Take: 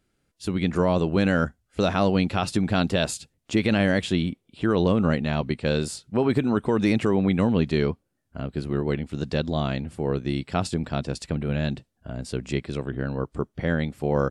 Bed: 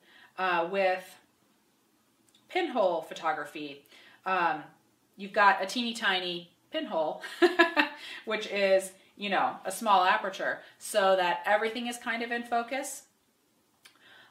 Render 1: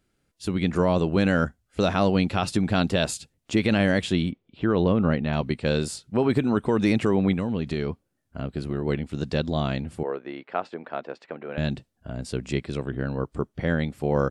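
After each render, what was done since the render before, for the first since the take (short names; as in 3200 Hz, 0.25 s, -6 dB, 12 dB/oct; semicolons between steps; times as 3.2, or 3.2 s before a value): 4.31–5.33 air absorption 180 m; 7.33–8.85 compressor, threshold -22 dBFS; 10.03–11.58 Butterworth band-pass 940 Hz, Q 0.57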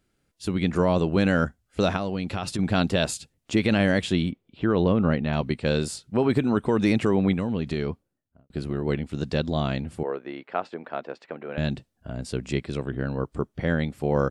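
1.96–2.59 compressor 4:1, threshold -25 dBFS; 7.87–8.5 studio fade out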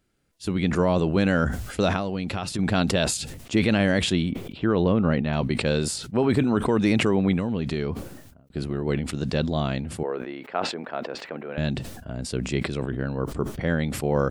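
sustainer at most 54 dB/s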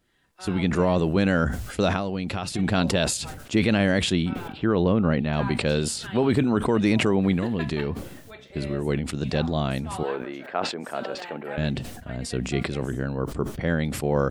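add bed -13.5 dB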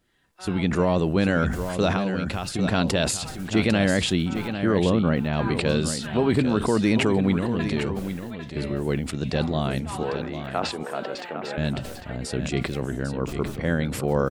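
echo 0.8 s -9 dB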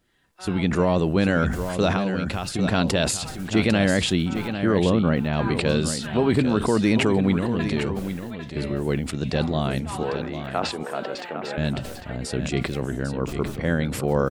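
gain +1 dB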